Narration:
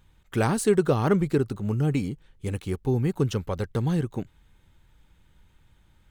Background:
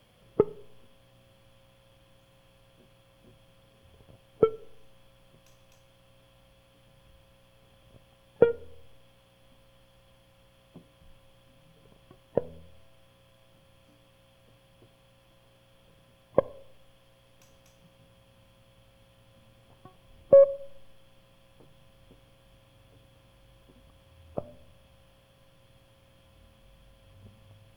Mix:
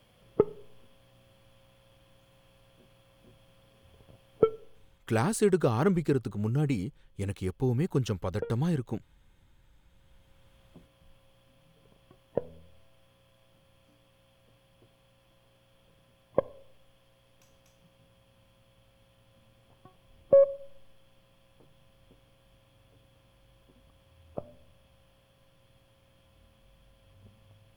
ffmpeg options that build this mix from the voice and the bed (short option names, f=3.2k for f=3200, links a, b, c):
-filter_complex "[0:a]adelay=4750,volume=-3.5dB[a];[1:a]volume=12dB,afade=t=out:st=4.43:d=0.72:silence=0.16788,afade=t=in:st=9.82:d=0.73:silence=0.223872[b];[a][b]amix=inputs=2:normalize=0"